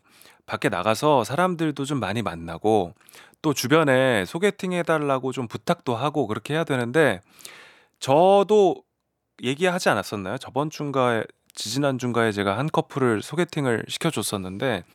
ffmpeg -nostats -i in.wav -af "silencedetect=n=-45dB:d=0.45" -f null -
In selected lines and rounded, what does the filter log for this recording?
silence_start: 8.80
silence_end: 9.39 | silence_duration: 0.59